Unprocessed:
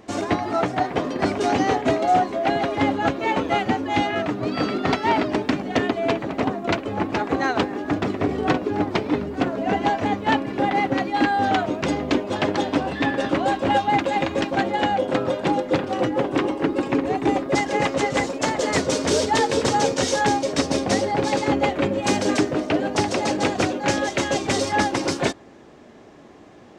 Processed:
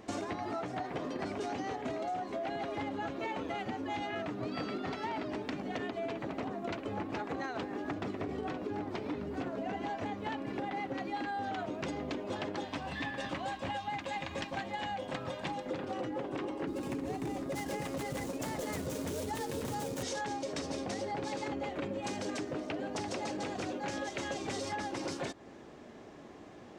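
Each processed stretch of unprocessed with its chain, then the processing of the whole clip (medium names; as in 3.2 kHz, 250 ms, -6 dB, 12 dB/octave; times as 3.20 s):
12.65–15.66 s: peaking EQ 380 Hz -11 dB 1.6 oct + band-stop 1.4 kHz, Q 11
16.67–20.03 s: median filter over 9 samples + tone controls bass +8 dB, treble +12 dB
whole clip: peak limiter -15 dBFS; compression, threshold -30 dBFS; trim -4.5 dB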